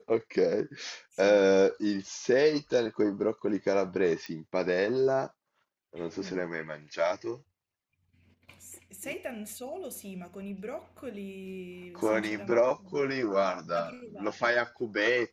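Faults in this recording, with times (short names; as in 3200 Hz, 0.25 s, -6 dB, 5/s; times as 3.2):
4.26 pop -25 dBFS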